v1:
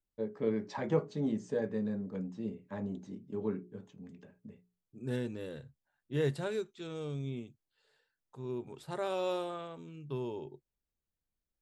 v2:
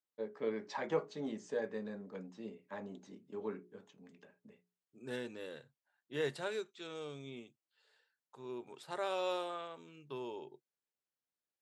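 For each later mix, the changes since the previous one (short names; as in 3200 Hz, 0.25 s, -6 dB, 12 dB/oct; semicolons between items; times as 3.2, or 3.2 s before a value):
master: add weighting filter A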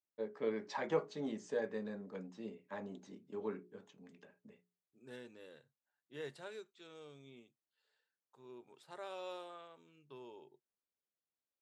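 second voice -9.5 dB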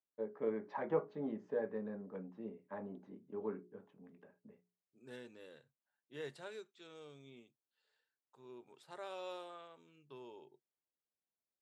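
first voice: add LPF 1400 Hz 12 dB/oct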